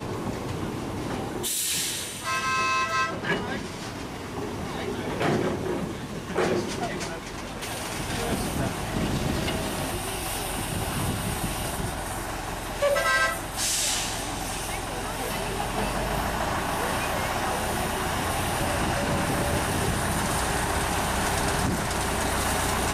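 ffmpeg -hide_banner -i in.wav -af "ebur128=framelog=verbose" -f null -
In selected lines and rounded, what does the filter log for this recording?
Integrated loudness:
  I:         -27.3 LUFS
  Threshold: -37.3 LUFS
Loudness range:
  LRA:         3.7 LU
  Threshold: -47.4 LUFS
  LRA low:   -29.3 LUFS
  LRA high:  -25.6 LUFS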